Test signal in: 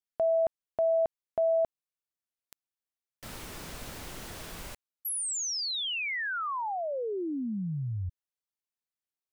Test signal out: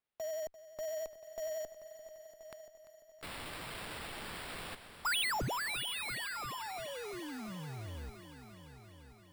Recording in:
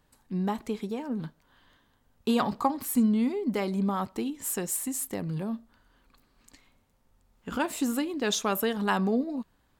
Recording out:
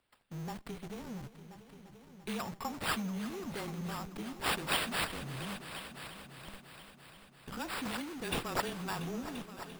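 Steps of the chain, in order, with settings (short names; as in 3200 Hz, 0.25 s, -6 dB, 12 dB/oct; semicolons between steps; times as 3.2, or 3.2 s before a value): pre-emphasis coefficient 0.8; vibrato 11 Hz 48 cents; frequency shift -25 Hz; in parallel at -5 dB: Schmitt trigger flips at -47 dBFS; on the sum: sample-and-hold 7×; multi-head echo 0.343 s, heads all three, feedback 50%, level -16 dB; gain -2.5 dB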